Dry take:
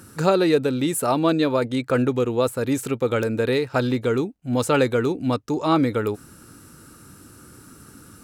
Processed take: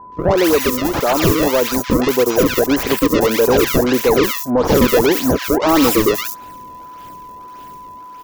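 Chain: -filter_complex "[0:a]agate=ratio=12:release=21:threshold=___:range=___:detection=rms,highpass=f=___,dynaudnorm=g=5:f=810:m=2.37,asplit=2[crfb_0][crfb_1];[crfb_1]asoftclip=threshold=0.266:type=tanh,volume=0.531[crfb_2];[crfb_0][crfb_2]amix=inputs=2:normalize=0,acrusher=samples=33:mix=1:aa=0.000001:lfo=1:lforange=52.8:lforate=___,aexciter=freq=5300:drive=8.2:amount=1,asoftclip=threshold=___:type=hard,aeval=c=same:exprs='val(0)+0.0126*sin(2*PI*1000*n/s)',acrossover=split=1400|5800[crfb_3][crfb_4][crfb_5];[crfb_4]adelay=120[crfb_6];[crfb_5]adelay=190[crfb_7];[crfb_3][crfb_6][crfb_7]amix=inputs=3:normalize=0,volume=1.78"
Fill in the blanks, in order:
0.0112, 0.398, 360, 1.7, 0.211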